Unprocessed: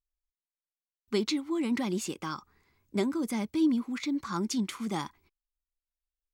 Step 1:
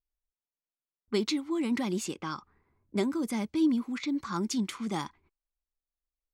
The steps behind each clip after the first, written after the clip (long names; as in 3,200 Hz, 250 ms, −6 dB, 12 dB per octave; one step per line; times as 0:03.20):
low-pass that shuts in the quiet parts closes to 940 Hz, open at −28 dBFS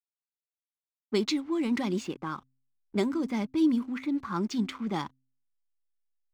low-pass that shuts in the quiet parts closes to 400 Hz, open at −24.5 dBFS
slack as between gear wheels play −48.5 dBFS
hum removal 130.6 Hz, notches 2
level +1.5 dB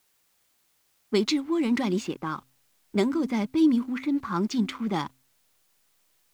bit-depth reduction 12 bits, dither triangular
level +3.5 dB